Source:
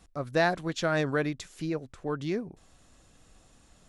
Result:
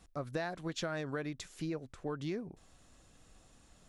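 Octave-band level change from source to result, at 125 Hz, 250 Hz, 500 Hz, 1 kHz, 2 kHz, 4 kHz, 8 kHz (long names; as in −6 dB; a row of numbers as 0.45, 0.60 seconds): −7.5, −7.5, −10.0, −11.5, −11.5, −7.0, −5.0 decibels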